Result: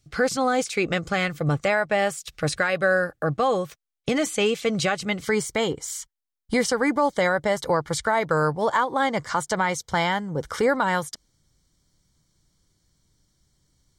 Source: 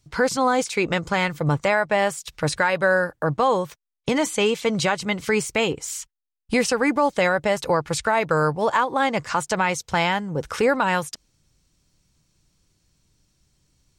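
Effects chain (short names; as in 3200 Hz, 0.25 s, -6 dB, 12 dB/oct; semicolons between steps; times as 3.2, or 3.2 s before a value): Butterworth band-stop 950 Hz, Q 4.6, from 5.22 s 2600 Hz; gain -1.5 dB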